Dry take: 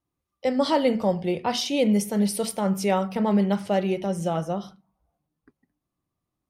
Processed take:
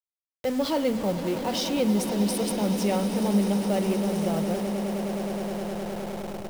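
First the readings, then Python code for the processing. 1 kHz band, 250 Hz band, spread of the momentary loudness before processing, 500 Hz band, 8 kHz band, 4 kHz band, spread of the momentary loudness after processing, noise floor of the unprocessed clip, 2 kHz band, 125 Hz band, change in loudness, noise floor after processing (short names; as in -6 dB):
-4.0 dB, 0.0 dB, 5 LU, -2.0 dB, 0.0 dB, -1.0 dB, 8 LU, -84 dBFS, -2.0 dB, -0.5 dB, -2.0 dB, under -85 dBFS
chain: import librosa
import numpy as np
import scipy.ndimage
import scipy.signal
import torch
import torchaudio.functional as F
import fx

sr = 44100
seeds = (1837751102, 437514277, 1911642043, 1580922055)

p1 = fx.delta_hold(x, sr, step_db=-35.0)
p2 = fx.peak_eq(p1, sr, hz=120.0, db=-13.0, octaves=0.28)
p3 = p2 + fx.echo_swell(p2, sr, ms=104, loudest=8, wet_db=-15.0, dry=0)
p4 = fx.dynamic_eq(p3, sr, hz=1200.0, q=0.91, threshold_db=-36.0, ratio=4.0, max_db=-6)
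p5 = fx.schmitt(p4, sr, flips_db=-35.0)
p6 = p4 + (p5 * 10.0 ** (-10.0 / 20.0))
y = p6 * 10.0 ** (-3.5 / 20.0)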